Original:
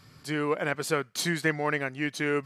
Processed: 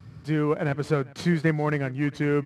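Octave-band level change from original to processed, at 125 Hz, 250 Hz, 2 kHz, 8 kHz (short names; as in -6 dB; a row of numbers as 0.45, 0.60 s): +10.0, +6.0, -3.0, -11.5 dB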